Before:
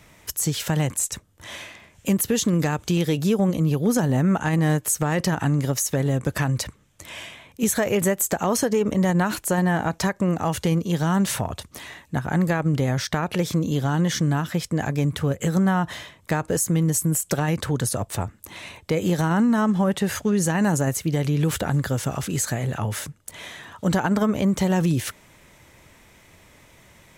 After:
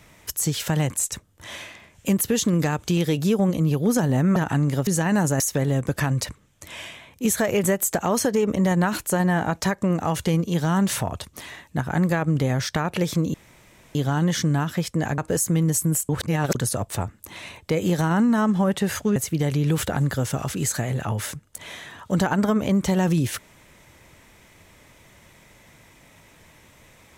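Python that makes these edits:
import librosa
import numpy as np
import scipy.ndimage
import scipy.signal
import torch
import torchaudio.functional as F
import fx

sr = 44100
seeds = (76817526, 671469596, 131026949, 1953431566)

y = fx.edit(x, sr, fx.cut(start_s=4.36, length_s=0.91),
    fx.insert_room_tone(at_s=13.72, length_s=0.61),
    fx.cut(start_s=14.95, length_s=1.43),
    fx.reverse_span(start_s=17.29, length_s=0.46),
    fx.move(start_s=20.36, length_s=0.53, to_s=5.78), tone=tone)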